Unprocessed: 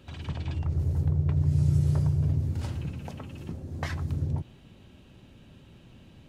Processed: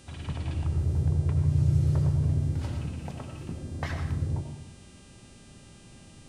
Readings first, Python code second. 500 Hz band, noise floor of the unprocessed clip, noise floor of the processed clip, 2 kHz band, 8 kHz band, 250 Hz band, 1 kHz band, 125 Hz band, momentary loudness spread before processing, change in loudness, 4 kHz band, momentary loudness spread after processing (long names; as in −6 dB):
+1.5 dB, −54 dBFS, −52 dBFS, +0.5 dB, can't be measured, −0.5 dB, +1.0 dB, 0.0 dB, 15 LU, 0.0 dB, +0.5 dB, 15 LU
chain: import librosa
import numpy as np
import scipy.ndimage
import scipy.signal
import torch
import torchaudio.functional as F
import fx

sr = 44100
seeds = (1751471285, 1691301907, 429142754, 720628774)

y = fx.high_shelf(x, sr, hz=5100.0, db=-6.0)
y = fx.rev_freeverb(y, sr, rt60_s=0.77, hf_ratio=0.8, predelay_ms=50, drr_db=5.0)
y = fx.dmg_buzz(y, sr, base_hz=400.0, harmonics=25, level_db=-59.0, tilt_db=0, odd_only=False)